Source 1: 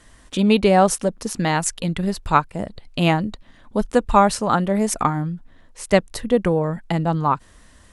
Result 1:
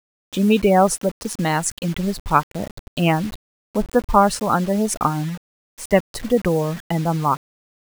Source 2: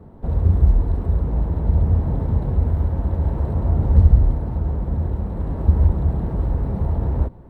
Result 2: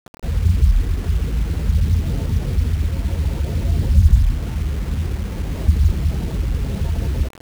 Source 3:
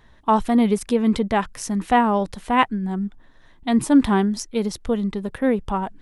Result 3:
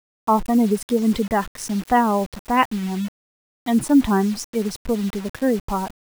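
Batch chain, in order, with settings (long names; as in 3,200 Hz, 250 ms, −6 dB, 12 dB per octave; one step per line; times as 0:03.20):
gate on every frequency bin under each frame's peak −25 dB strong
bit-depth reduction 6 bits, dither none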